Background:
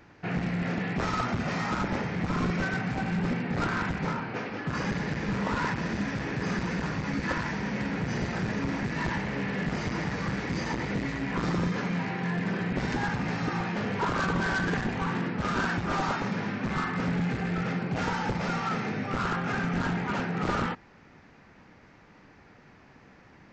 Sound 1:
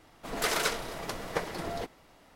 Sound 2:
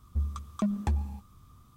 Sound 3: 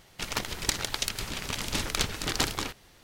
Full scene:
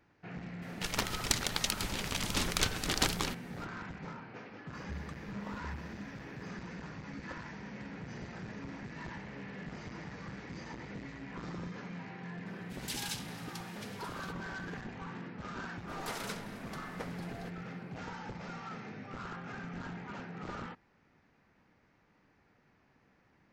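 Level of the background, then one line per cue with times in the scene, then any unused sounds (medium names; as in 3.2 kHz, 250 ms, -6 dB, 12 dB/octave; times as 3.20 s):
background -14 dB
0.62 s: add 3 -2.5 dB
4.73 s: add 2 -10.5 dB + slow attack 143 ms
12.46 s: add 1 -6.5 dB + steep high-pass 2.5 kHz
15.64 s: add 1 -12.5 dB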